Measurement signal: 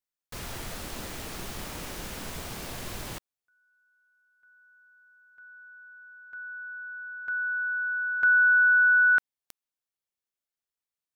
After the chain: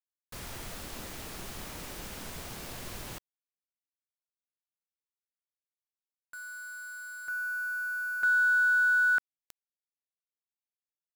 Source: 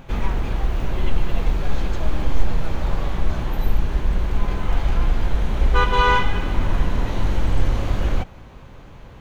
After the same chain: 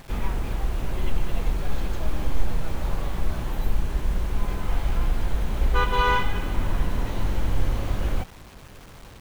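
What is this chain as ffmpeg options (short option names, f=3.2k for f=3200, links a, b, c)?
-af "acrusher=bits=6:mix=0:aa=0.000001,volume=-4.5dB"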